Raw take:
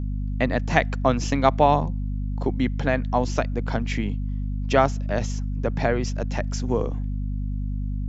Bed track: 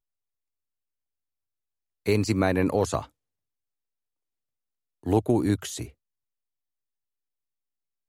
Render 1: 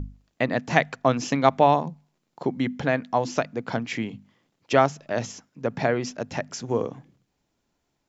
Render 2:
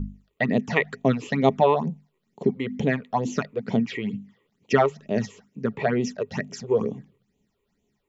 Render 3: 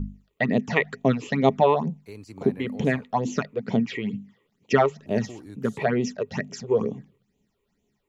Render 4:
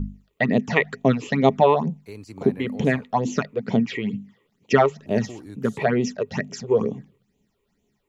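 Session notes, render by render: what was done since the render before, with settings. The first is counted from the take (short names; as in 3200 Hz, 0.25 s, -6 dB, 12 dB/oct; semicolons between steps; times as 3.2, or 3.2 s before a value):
notches 50/100/150/200/250 Hz
small resonant body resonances 210/410/1900 Hz, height 12 dB, ringing for 60 ms; phaser stages 8, 2.2 Hz, lowest notch 200–1600 Hz
add bed track -19 dB
gain +2.5 dB; limiter -2 dBFS, peak gain reduction 1 dB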